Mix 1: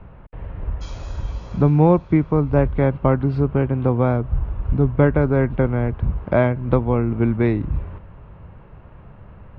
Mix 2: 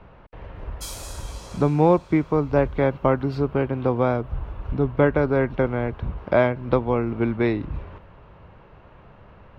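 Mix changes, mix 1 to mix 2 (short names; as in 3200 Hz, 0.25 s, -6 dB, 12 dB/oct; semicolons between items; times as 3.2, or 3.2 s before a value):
background: remove brick-wall FIR low-pass 7100 Hz; master: add tone controls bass -8 dB, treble +13 dB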